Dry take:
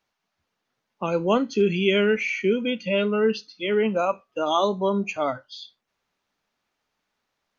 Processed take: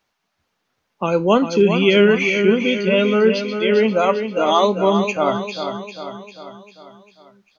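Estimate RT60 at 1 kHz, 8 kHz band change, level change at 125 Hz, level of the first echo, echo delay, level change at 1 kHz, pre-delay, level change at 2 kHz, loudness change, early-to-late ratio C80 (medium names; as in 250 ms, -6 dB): no reverb, no reading, +7.0 dB, -8.0 dB, 398 ms, +7.0 dB, no reverb, +7.0 dB, +6.5 dB, no reverb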